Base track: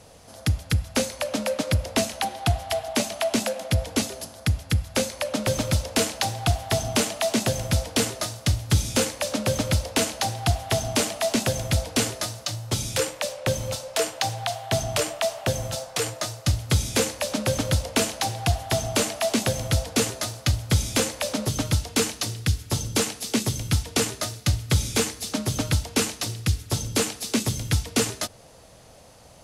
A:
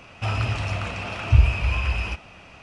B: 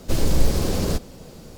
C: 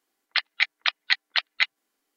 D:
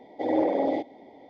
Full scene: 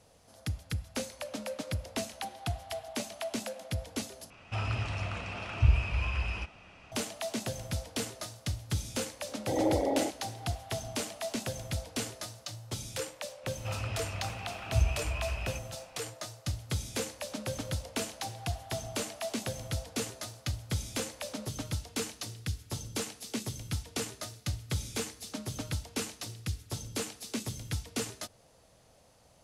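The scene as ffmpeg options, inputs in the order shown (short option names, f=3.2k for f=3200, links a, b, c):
-filter_complex "[1:a]asplit=2[a][b];[0:a]volume=-12dB,asplit=2[c][d];[c]atrim=end=4.304[e];[a]atrim=end=2.62,asetpts=PTS-STARTPTS,volume=-8dB[f];[d]atrim=start=6.916[g];[4:a]atrim=end=1.29,asetpts=PTS-STARTPTS,volume=-4.5dB,afade=t=in:d=0.004:c=hsin,afade=t=out:st=1.286:d=0.004:c=hsin,adelay=9280[h];[b]atrim=end=2.62,asetpts=PTS-STARTPTS,volume=-11.5dB,afade=t=in:d=0.004:c=hsin,afade=t=out:st=2.616:d=0.004:c=hsin,adelay=13430[i];[e][f]acrossfade=d=0.004:c1=hsin:c2=hsin[j];[j][g]acrossfade=d=0.004:c1=hsin:c2=hsin[k];[k][h][i]amix=inputs=3:normalize=0"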